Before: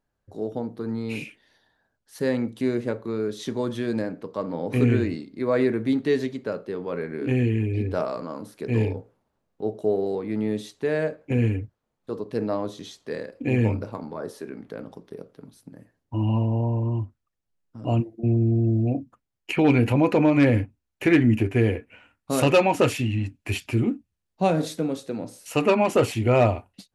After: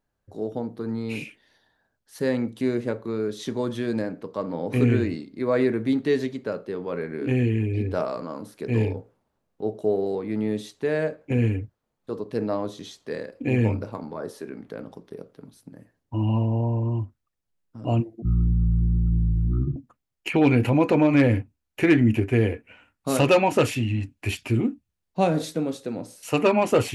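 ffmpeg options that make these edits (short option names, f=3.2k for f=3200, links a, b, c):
-filter_complex "[0:a]asplit=3[a][b][c];[a]atrim=end=18.224[d];[b]atrim=start=18.22:end=18.99,asetpts=PTS-STARTPTS,asetrate=22050,aresample=44100[e];[c]atrim=start=18.986[f];[d][e]acrossfade=d=0.004:c1=hsin:c2=hsin[g];[g][f]acrossfade=d=0.004:c1=hsin:c2=hsin"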